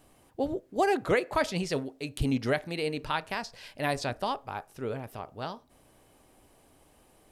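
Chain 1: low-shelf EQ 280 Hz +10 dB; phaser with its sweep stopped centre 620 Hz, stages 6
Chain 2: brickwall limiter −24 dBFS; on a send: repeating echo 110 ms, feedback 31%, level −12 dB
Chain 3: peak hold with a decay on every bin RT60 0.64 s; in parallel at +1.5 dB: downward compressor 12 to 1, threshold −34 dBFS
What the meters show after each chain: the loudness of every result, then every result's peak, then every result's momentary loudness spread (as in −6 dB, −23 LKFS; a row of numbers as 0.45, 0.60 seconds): −31.5, −36.0, −26.0 LKFS; −10.5, −22.5, −9.5 dBFS; 15, 7, 10 LU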